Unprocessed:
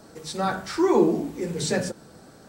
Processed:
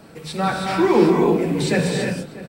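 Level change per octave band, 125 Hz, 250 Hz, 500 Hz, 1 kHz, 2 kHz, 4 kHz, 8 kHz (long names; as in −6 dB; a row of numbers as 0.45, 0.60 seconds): +9.5, +6.0, +5.5, +6.0, +8.0, +5.0, +0.5 decibels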